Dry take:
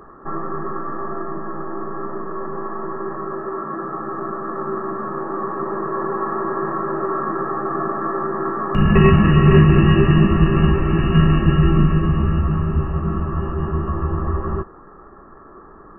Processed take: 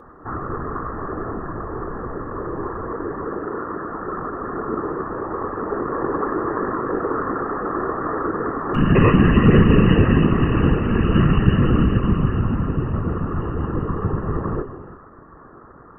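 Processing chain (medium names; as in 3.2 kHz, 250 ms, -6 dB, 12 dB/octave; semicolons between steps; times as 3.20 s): gated-style reverb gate 390 ms flat, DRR 9.5 dB; whisper effect; trim -2 dB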